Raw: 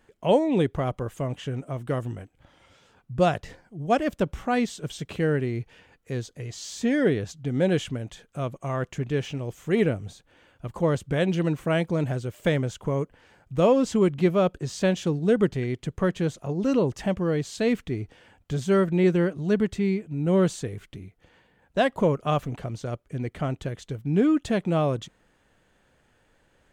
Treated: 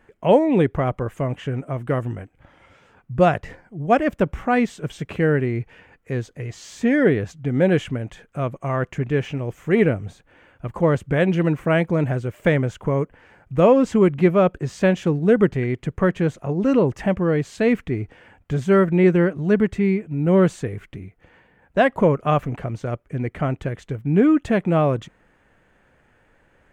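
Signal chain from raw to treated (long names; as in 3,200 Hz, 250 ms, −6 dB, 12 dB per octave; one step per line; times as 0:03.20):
high shelf with overshoot 2,900 Hz −7.5 dB, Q 1.5
level +5 dB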